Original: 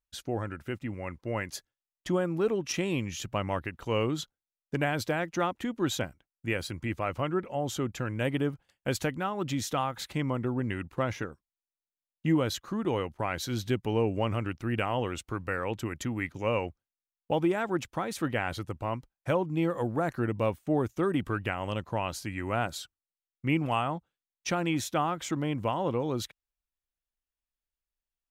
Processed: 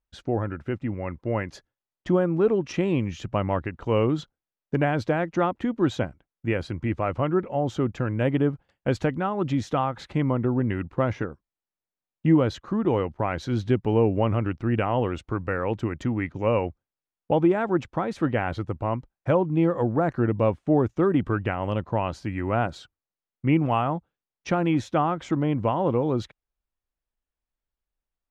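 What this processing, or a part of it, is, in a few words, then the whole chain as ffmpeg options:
through cloth: -af "lowpass=6300,highshelf=frequency=2200:gain=-14,volume=7dB"

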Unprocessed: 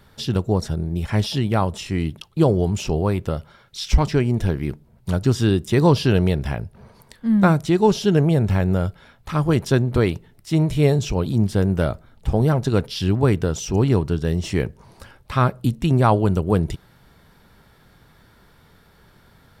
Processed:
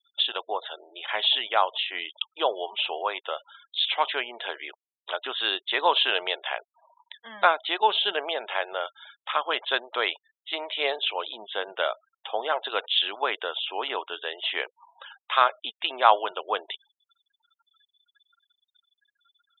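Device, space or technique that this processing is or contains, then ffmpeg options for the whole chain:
musical greeting card: -af "aresample=8000,aresample=44100,highpass=frequency=650:width=0.5412,highpass=frequency=650:width=1.3066,equalizer=frequency=3400:width_type=o:width=0.56:gain=10,afftfilt=real='re*gte(hypot(re,im),0.00794)':imag='im*gte(hypot(re,im),0.00794)':win_size=1024:overlap=0.75,volume=2dB"

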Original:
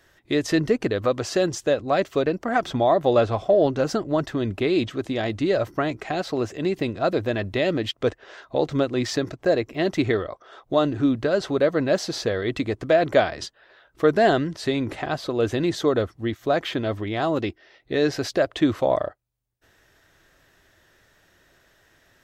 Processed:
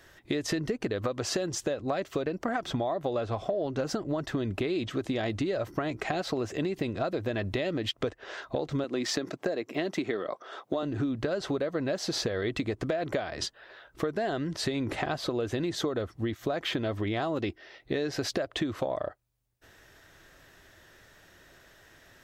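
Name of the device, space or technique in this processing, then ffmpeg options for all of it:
serial compression, peaks first: -filter_complex "[0:a]asettb=1/sr,asplit=3[link_01][link_02][link_03];[link_01]atrim=end=8.844[link_04];[link_02]atrim=start=8.84:end=10.83,asetpts=PTS-STARTPTS,afade=type=in:duration=0.004:curve=qsin,afade=type=out:start_time=1.986:duration=0.004:curve=qsin,highpass=frequency=170:width=0.5412,highpass=frequency=170:width=1.3066[link_05];[link_03]atrim=start=10.826[link_06];[link_04][link_05]acrossfade=duration=0.004:curve1=hsin:curve2=qsin[link_07];[link_07][link_06]acrossfade=duration=0.004:curve1=qsin:curve2=hsin,acompressor=threshold=-26dB:ratio=6,acompressor=threshold=-31dB:ratio=2.5,volume=3dB"

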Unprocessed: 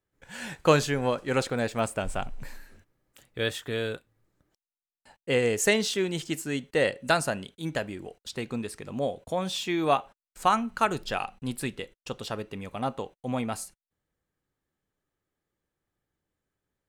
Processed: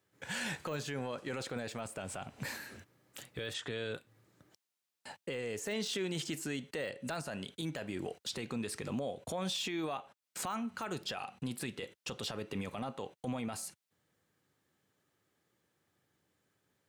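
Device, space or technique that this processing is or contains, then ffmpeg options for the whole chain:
broadcast voice chain: -filter_complex "[0:a]highpass=frequency=91:width=0.5412,highpass=frequency=91:width=1.3066,deesser=0.75,acompressor=threshold=-39dB:ratio=5,equalizer=frequency=4100:width_type=o:width=2.4:gain=3,alimiter=level_in=11dB:limit=-24dB:level=0:latency=1:release=12,volume=-11dB,asplit=3[link_01][link_02][link_03];[link_01]afade=type=out:start_time=3.53:duration=0.02[link_04];[link_02]lowpass=frequency=8400:width=0.5412,lowpass=frequency=8400:width=1.3066,afade=type=in:start_time=3.53:duration=0.02,afade=type=out:start_time=3.93:duration=0.02[link_05];[link_03]afade=type=in:start_time=3.93:duration=0.02[link_06];[link_04][link_05][link_06]amix=inputs=3:normalize=0,volume=6.5dB"

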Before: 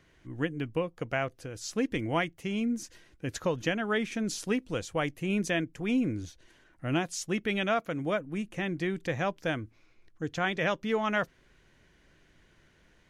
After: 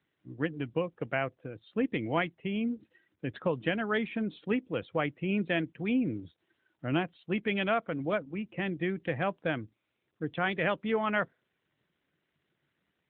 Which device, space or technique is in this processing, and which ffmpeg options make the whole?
mobile call with aggressive noise cancelling: -af "highpass=100,afftdn=noise_reduction=14:noise_floor=-49" -ar 8000 -c:a libopencore_amrnb -b:a 12200

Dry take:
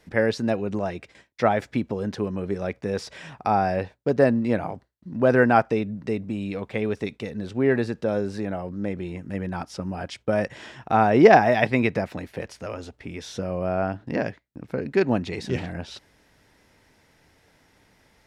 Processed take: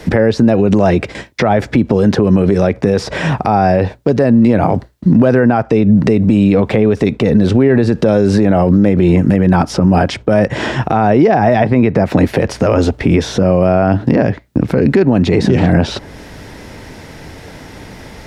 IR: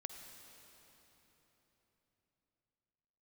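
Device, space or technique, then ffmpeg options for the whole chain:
mastering chain: -filter_complex "[0:a]equalizer=frequency=4400:width_type=o:width=2.1:gain=3,acrossover=split=98|1800[link_01][link_02][link_03];[link_01]acompressor=threshold=-49dB:ratio=4[link_04];[link_02]acompressor=threshold=-29dB:ratio=4[link_05];[link_03]acompressor=threshold=-47dB:ratio=4[link_06];[link_04][link_05][link_06]amix=inputs=3:normalize=0,acompressor=threshold=-33dB:ratio=1.5,tiltshelf=frequency=910:gain=4.5,alimiter=level_in=26dB:limit=-1dB:release=50:level=0:latency=1,volume=-1dB"

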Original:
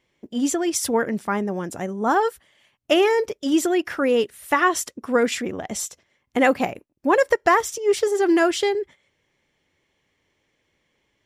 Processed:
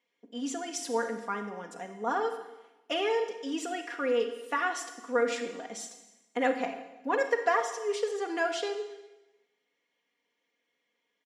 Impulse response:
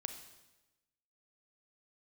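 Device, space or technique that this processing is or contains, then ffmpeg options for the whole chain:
supermarket ceiling speaker: -filter_complex "[0:a]highpass=330,lowpass=6900,aecho=1:1:4.2:0.76[link_01];[1:a]atrim=start_sample=2205[link_02];[link_01][link_02]afir=irnorm=-1:irlink=0,volume=-9dB"

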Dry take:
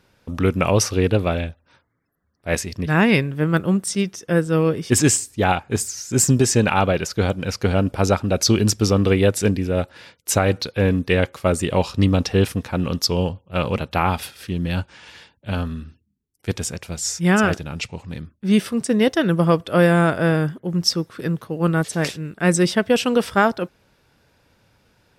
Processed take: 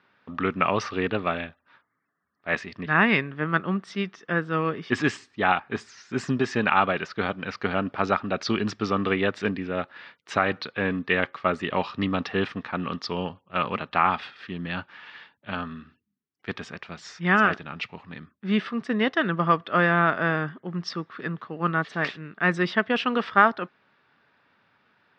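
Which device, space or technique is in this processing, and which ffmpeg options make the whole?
kitchen radio: -af "highpass=220,equalizer=frequency=330:width_type=q:width=4:gain=-4,equalizer=frequency=510:width_type=q:width=4:gain=-7,equalizer=frequency=1200:width_type=q:width=4:gain=8,equalizer=frequency=1800:width_type=q:width=4:gain=6,lowpass=frequency=3800:width=0.5412,lowpass=frequency=3800:width=1.3066,volume=-3.5dB"

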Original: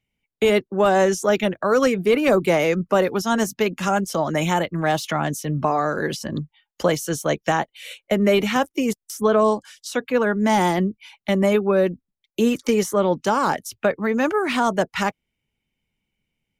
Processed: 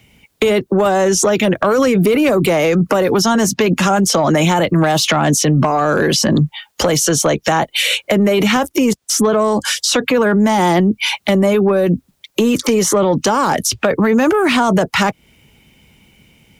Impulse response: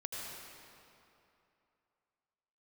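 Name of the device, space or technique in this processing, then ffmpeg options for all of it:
mastering chain: -filter_complex "[0:a]highpass=43,equalizer=frequency=2000:width_type=o:width=0.77:gain=-2,acrossover=split=130|7900[link_01][link_02][link_03];[link_01]acompressor=threshold=-48dB:ratio=4[link_04];[link_02]acompressor=threshold=-24dB:ratio=4[link_05];[link_03]acompressor=threshold=-52dB:ratio=4[link_06];[link_04][link_05][link_06]amix=inputs=3:normalize=0,acompressor=threshold=-35dB:ratio=1.5,asoftclip=type=tanh:threshold=-20.5dB,asoftclip=type=hard:threshold=-24dB,alimiter=level_in=35.5dB:limit=-1dB:release=50:level=0:latency=1,volume=-6dB"

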